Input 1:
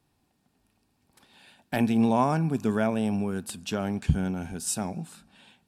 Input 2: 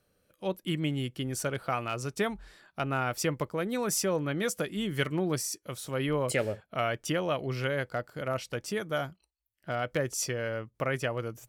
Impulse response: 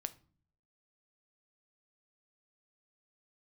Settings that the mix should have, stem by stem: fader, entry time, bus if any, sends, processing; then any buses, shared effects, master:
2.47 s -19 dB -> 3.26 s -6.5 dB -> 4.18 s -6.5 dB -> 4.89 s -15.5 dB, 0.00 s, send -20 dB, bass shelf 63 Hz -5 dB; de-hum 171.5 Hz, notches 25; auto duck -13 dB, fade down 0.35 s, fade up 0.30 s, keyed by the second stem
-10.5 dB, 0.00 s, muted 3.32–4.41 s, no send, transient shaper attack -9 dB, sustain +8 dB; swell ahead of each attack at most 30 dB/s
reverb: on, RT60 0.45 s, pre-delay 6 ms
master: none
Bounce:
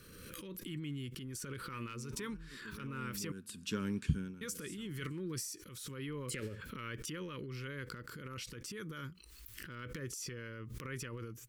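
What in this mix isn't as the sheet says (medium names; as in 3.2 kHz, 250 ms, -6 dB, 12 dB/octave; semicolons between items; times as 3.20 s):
stem 1: missing de-hum 171.5 Hz, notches 25; master: extra Butterworth band-stop 710 Hz, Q 1.1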